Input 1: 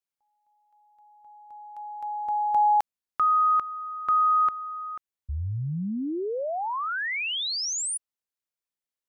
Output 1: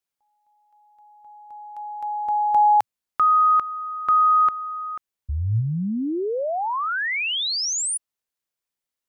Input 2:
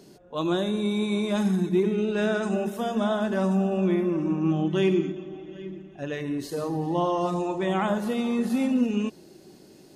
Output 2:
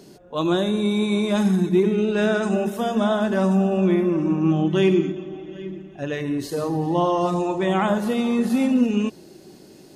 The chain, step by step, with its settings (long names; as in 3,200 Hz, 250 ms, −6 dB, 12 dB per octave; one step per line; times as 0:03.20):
dynamic equaliser 110 Hz, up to +6 dB, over −54 dBFS, Q 5.9
level +4.5 dB